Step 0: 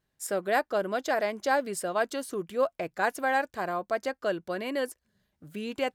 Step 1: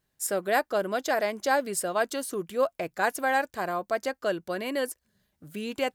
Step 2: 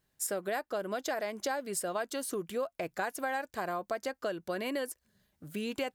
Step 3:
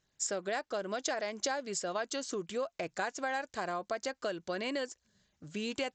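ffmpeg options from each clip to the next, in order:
-af "highshelf=f=6500:g=7.5,volume=1.12"
-af "acompressor=threshold=0.0282:ratio=6"
-af "crystalizer=i=2:c=0,volume=0.841" -ar 16000 -c:a sbc -b:a 64k

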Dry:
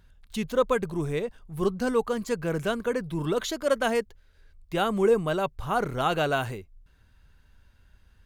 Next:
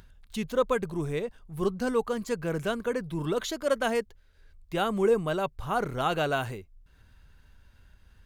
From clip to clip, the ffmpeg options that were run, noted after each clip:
-af "acompressor=mode=upward:threshold=0.00501:ratio=2.5,volume=0.794"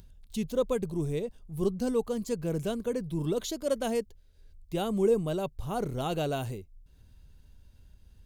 -af "equalizer=f=1500:t=o:w=1.8:g=-14.5,volume=1.19"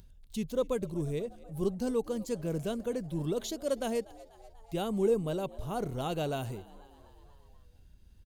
-filter_complex "[0:a]asplit=6[s0][s1][s2][s3][s4][s5];[s1]adelay=244,afreqshift=73,volume=0.0841[s6];[s2]adelay=488,afreqshift=146,volume=0.0531[s7];[s3]adelay=732,afreqshift=219,volume=0.0335[s8];[s4]adelay=976,afreqshift=292,volume=0.0211[s9];[s5]adelay=1220,afreqshift=365,volume=0.0132[s10];[s0][s6][s7][s8][s9][s10]amix=inputs=6:normalize=0,volume=0.75"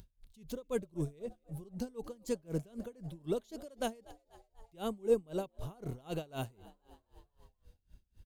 -af "aeval=exprs='val(0)*pow(10,-28*(0.5-0.5*cos(2*PI*3.9*n/s))/20)':c=same,volume=1.12"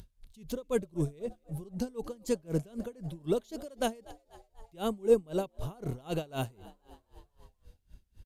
-af "aresample=32000,aresample=44100,volume=1.78"

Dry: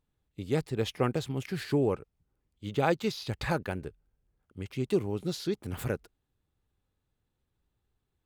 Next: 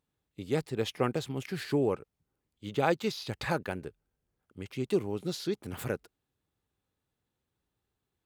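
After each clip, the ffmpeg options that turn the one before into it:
-af "highpass=f=150:p=1"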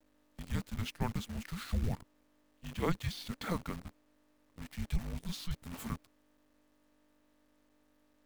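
-af "aeval=exprs='val(0)+0.000891*(sin(2*PI*50*n/s)+sin(2*PI*2*50*n/s)/2+sin(2*PI*3*50*n/s)/3+sin(2*PI*4*50*n/s)/4+sin(2*PI*5*50*n/s)/5)':c=same,afreqshift=-350,acrusher=bits=8:dc=4:mix=0:aa=0.000001,volume=0.562"

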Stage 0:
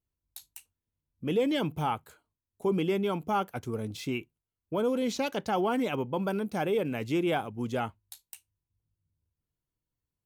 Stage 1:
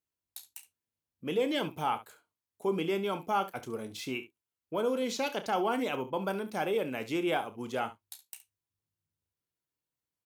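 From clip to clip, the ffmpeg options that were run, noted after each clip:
-af "highpass=f=400:p=1,aecho=1:1:31|69:0.251|0.178"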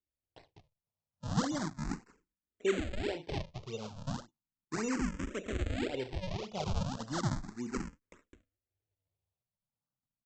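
-filter_complex "[0:a]equalizer=f=1500:t=o:w=2.1:g=-14,aresample=16000,acrusher=samples=24:mix=1:aa=0.000001:lfo=1:lforange=38.4:lforate=1.8,aresample=44100,asplit=2[s0][s1];[s1]afreqshift=0.35[s2];[s0][s2]amix=inputs=2:normalize=1,volume=1.5"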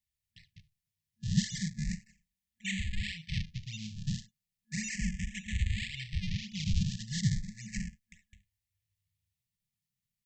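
-af "afftfilt=real='re*(1-between(b*sr/4096,220,1700))':imag='im*(1-between(b*sr/4096,220,1700))':win_size=4096:overlap=0.75,volume=1.78"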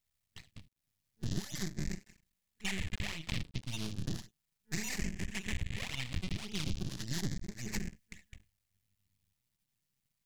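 -af "aeval=exprs='max(val(0),0)':c=same,acompressor=threshold=0.01:ratio=6,volume=2.66"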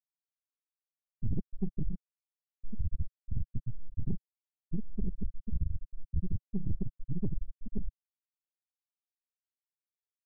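-af "afftfilt=real='re*gte(hypot(re,im),0.126)':imag='im*gte(hypot(re,im),0.126)':win_size=1024:overlap=0.75,equalizer=f=140:w=2.2:g=-5.5,asoftclip=type=tanh:threshold=0.0141,volume=5.62"

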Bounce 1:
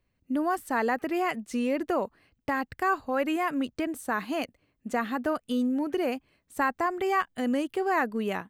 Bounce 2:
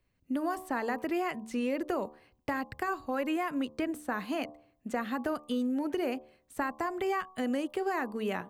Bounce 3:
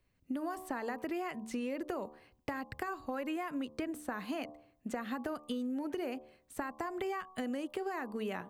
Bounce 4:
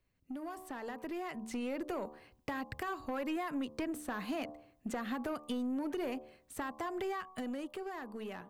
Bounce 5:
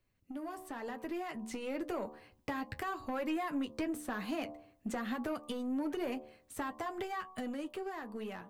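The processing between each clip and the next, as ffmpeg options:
-filter_complex "[0:a]acrossover=split=270|3300[s0][s1][s2];[s0]acompressor=threshold=0.0126:ratio=4[s3];[s1]acompressor=threshold=0.0316:ratio=4[s4];[s2]acompressor=threshold=0.00282:ratio=4[s5];[s3][s4][s5]amix=inputs=3:normalize=0,bandreject=f=74.78:t=h:w=4,bandreject=f=149.56:t=h:w=4,bandreject=f=224.34:t=h:w=4,bandreject=f=299.12:t=h:w=4,bandreject=f=373.9:t=h:w=4,bandreject=f=448.68:t=h:w=4,bandreject=f=523.46:t=h:w=4,bandreject=f=598.24:t=h:w=4,bandreject=f=673.02:t=h:w=4,bandreject=f=747.8:t=h:w=4,bandreject=f=822.58:t=h:w=4,bandreject=f=897.36:t=h:w=4,bandreject=f=972.14:t=h:w=4,bandreject=f=1046.92:t=h:w=4,bandreject=f=1121.7:t=h:w=4,bandreject=f=1196.48:t=h:w=4"
-af "acompressor=threshold=0.02:ratio=6"
-af "aeval=exprs='0.0891*(cos(1*acos(clip(val(0)/0.0891,-1,1)))-cos(1*PI/2))+0.00316*(cos(6*acos(clip(val(0)/0.0891,-1,1)))-cos(6*PI/2))':c=same,asoftclip=type=tanh:threshold=0.0251,dynaudnorm=f=210:g=13:m=2,volume=0.668"
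-af "flanger=delay=8.9:depth=1.5:regen=-48:speed=0.97:shape=sinusoidal,volume=1.68"

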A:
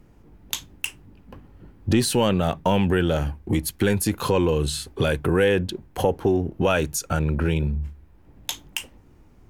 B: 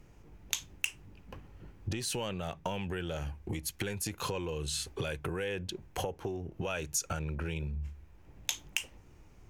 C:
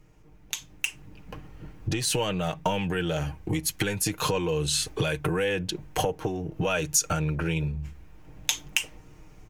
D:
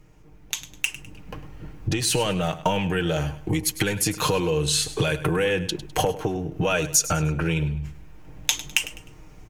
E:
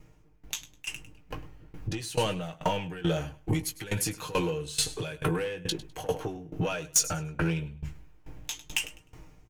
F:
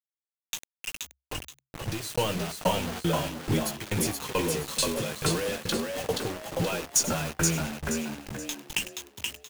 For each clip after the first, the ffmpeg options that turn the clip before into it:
-af "acompressor=threshold=0.0355:ratio=6,equalizer=f=250:t=o:w=0.67:g=-6,equalizer=f=2500:t=o:w=0.67:g=5,equalizer=f=6300:t=o:w=0.67:g=7,volume=0.668"
-af "aecho=1:1:6.5:0.52,dynaudnorm=f=590:g=3:m=2.99,volume=0.841"
-af "aecho=1:1:102|204|306:0.178|0.0605|0.0206,volume=1.5"
-filter_complex "[0:a]asplit=2[s0][s1];[s1]adelay=18,volume=0.398[s2];[s0][s2]amix=inputs=2:normalize=0,asoftclip=type=tanh:threshold=0.188,aeval=exprs='val(0)*pow(10,-19*if(lt(mod(2.3*n/s,1),2*abs(2.3)/1000),1-mod(2.3*n/s,1)/(2*abs(2.3)/1000),(mod(2.3*n/s,1)-2*abs(2.3)/1000)/(1-2*abs(2.3)/1000))/20)':c=same"
-filter_complex "[0:a]acrusher=bits=5:mix=0:aa=0.000001,asplit=6[s0][s1][s2][s3][s4][s5];[s1]adelay=476,afreqshift=67,volume=0.668[s6];[s2]adelay=952,afreqshift=134,volume=0.24[s7];[s3]adelay=1428,afreqshift=201,volume=0.0871[s8];[s4]adelay=1904,afreqshift=268,volume=0.0313[s9];[s5]adelay=2380,afreqshift=335,volume=0.0112[s10];[s0][s6][s7][s8][s9][s10]amix=inputs=6:normalize=0"

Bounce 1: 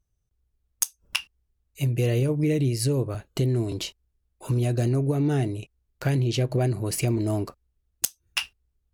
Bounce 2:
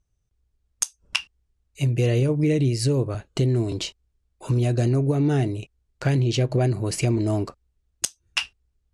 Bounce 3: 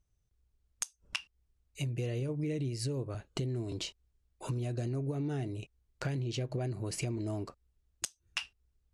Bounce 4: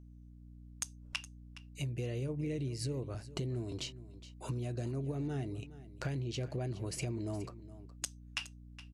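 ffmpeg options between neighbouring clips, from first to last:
-af "lowpass=f=9100:w=0.5412,lowpass=f=9100:w=1.3066,volume=1.33"
-af "acompressor=threshold=0.0251:ratio=3,volume=0.668"
-af "aeval=exprs='val(0)+0.00316*(sin(2*PI*60*n/s)+sin(2*PI*2*60*n/s)/2+sin(2*PI*3*60*n/s)/3+sin(2*PI*4*60*n/s)/4+sin(2*PI*5*60*n/s)/5)':c=same,aecho=1:1:417:0.158,volume=0.75"

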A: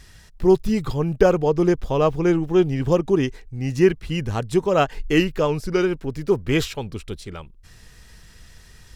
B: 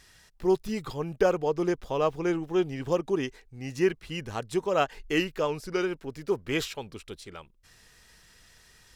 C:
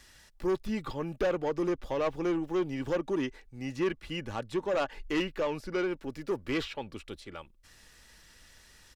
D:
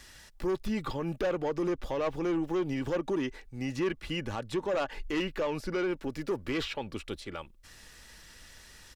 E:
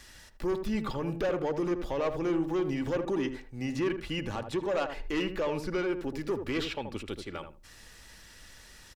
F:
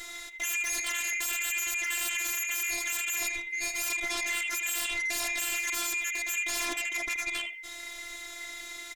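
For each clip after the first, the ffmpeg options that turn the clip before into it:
-af "lowshelf=f=220:g=-12,volume=0.562"
-filter_complex "[0:a]aecho=1:1:3.5:0.33,acrossover=split=120|4000[s0][s1][s2];[s1]asoftclip=type=tanh:threshold=0.0631[s3];[s2]acompressor=threshold=0.00126:ratio=6[s4];[s0][s3][s4]amix=inputs=3:normalize=0"
-af "alimiter=level_in=1.78:limit=0.0631:level=0:latency=1:release=76,volume=0.562,volume=1.68"
-filter_complex "[0:a]asplit=2[s0][s1];[s1]adelay=79,lowpass=f=910:p=1,volume=0.501,asplit=2[s2][s3];[s3]adelay=79,lowpass=f=910:p=1,volume=0.21,asplit=2[s4][s5];[s5]adelay=79,lowpass=f=910:p=1,volume=0.21[s6];[s0][s2][s4][s6]amix=inputs=4:normalize=0"
-af "afftfilt=real='real(if(lt(b,920),b+92*(1-2*mod(floor(b/92),2)),b),0)':imag='imag(if(lt(b,920),b+92*(1-2*mod(floor(b/92),2)),b),0)':win_size=2048:overlap=0.75,aeval=exprs='0.119*sin(PI/2*6.31*val(0)/0.119)':c=same,afftfilt=real='hypot(re,im)*cos(PI*b)':imag='0':win_size=512:overlap=0.75,volume=0.473"

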